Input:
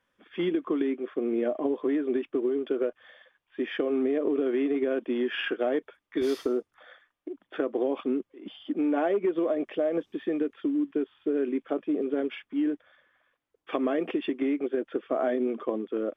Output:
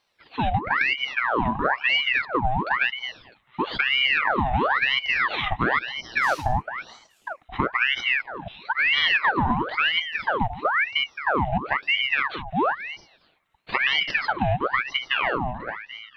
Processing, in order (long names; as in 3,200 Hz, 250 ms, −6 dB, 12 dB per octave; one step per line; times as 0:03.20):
fade-out on the ending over 1.16 s
echo through a band-pass that steps 218 ms, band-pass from 440 Hz, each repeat 1.4 octaves, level −9 dB
ring modulator whose carrier an LFO sweeps 1,500 Hz, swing 75%, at 1 Hz
level +7 dB